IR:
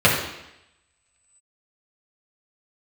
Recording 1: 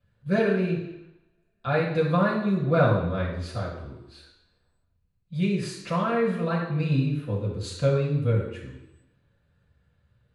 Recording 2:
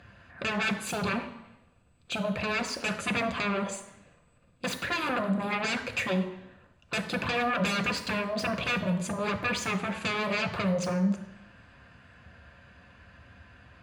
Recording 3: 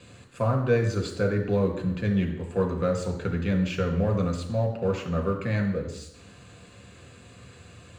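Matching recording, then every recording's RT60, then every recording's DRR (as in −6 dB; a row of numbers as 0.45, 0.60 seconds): 1; 0.85, 0.85, 0.85 seconds; −6.5, 6.0, 1.5 decibels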